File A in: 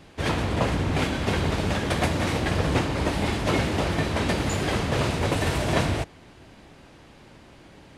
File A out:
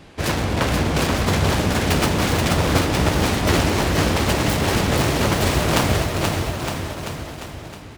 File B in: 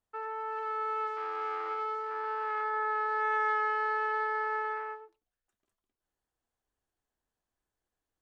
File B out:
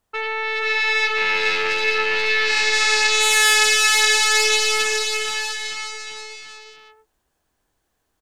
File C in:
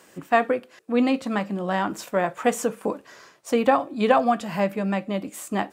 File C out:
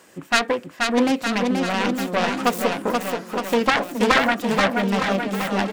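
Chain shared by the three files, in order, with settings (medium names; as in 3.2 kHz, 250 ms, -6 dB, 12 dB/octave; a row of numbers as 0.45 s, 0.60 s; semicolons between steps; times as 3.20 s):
self-modulated delay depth 0.75 ms; bouncing-ball echo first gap 480 ms, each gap 0.9×, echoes 5; peak normalisation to -3 dBFS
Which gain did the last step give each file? +4.5 dB, +14.0 dB, +2.0 dB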